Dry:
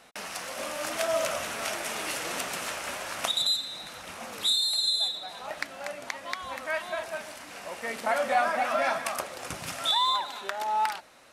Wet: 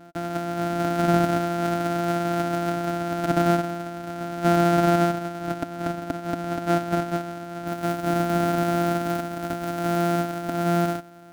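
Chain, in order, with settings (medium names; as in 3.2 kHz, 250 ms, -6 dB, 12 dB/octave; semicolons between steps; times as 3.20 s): sorted samples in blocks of 256 samples; treble shelf 10 kHz -2 dB, from 7.67 s +5 dB; peak limiter -19.5 dBFS, peak gain reduction 10 dB; small resonant body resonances 280/670/1400 Hz, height 18 dB, ringing for 35 ms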